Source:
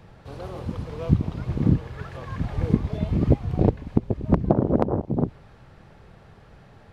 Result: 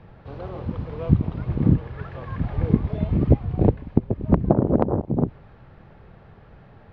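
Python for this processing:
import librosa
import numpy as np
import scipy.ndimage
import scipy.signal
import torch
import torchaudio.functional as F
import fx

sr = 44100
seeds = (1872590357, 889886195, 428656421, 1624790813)

y = fx.air_absorb(x, sr, metres=280.0)
y = fx.band_widen(y, sr, depth_pct=40, at=(3.23, 4.2))
y = y * librosa.db_to_amplitude(2.0)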